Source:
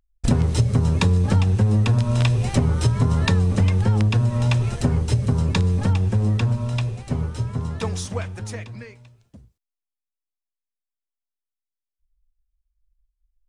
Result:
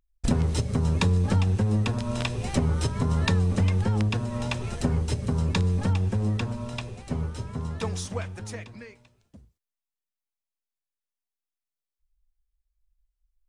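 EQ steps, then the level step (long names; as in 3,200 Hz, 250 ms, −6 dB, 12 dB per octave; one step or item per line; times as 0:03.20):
parametric band 120 Hz −11.5 dB 0.22 octaves
−3.5 dB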